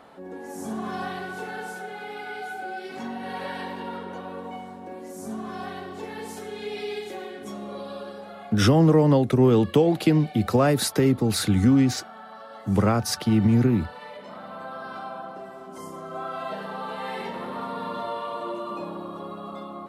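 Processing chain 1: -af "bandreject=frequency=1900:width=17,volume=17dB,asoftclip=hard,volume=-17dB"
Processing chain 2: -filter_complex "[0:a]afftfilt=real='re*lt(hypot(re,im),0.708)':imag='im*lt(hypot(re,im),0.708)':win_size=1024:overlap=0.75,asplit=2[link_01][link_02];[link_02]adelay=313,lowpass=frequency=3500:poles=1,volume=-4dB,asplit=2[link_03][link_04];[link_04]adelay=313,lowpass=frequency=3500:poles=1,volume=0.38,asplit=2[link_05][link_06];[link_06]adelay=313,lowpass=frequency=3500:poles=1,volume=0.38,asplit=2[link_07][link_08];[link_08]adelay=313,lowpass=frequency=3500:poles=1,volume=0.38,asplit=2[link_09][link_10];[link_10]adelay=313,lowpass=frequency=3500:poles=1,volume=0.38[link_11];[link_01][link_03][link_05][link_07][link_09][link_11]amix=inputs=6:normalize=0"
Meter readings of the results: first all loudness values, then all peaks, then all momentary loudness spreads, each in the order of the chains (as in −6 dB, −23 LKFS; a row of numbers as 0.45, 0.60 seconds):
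−27.5, −29.5 LKFS; −17.0, −9.5 dBFS; 17, 12 LU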